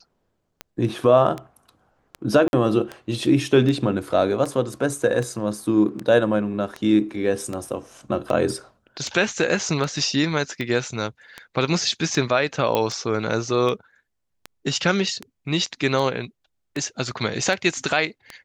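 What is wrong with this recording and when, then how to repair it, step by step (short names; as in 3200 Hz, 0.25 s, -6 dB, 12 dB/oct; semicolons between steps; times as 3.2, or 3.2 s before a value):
tick 78 rpm -16 dBFS
2.48–2.53 gap 51 ms
12.75 pop -8 dBFS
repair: de-click; interpolate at 2.48, 51 ms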